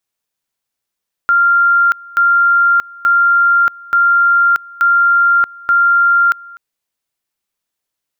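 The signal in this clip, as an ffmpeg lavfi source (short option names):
-f lavfi -i "aevalsrc='pow(10,(-7.5-24*gte(mod(t,0.88),0.63))/20)*sin(2*PI*1390*t)':d=5.28:s=44100"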